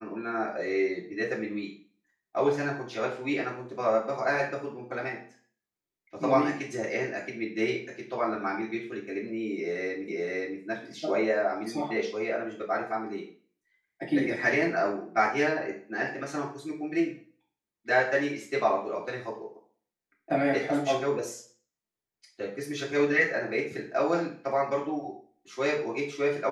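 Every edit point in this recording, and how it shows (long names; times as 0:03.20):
0:10.08: the same again, the last 0.52 s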